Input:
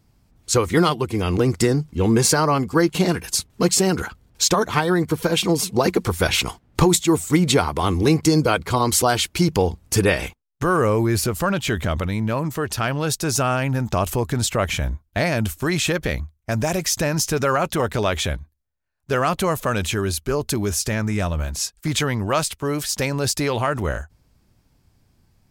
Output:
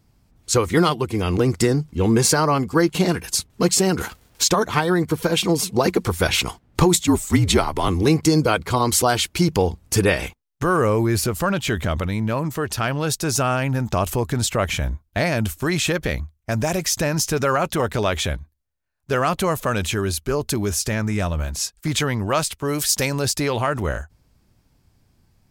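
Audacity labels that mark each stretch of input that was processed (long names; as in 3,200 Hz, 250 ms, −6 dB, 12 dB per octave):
4.000000	4.420000	spectral envelope flattened exponent 0.6
7.070000	7.880000	frequency shifter −57 Hz
22.680000	23.220000	high-shelf EQ 4,200 Hz +7.5 dB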